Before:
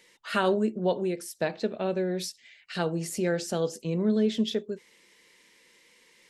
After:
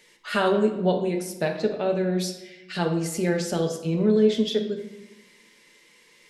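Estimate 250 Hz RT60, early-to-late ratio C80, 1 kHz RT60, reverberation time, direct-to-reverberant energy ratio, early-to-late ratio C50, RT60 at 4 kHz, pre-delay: 1.4 s, 11.0 dB, 1.0 s, 1.0 s, 3.0 dB, 8.0 dB, 0.75 s, 5 ms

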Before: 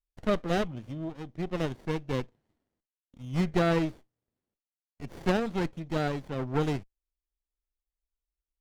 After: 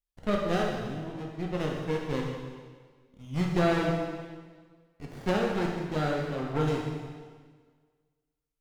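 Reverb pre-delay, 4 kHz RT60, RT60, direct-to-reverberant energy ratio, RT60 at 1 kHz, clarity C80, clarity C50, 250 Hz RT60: 6 ms, 1.5 s, 1.6 s, -1.5 dB, 1.5 s, 3.5 dB, 1.5 dB, 1.7 s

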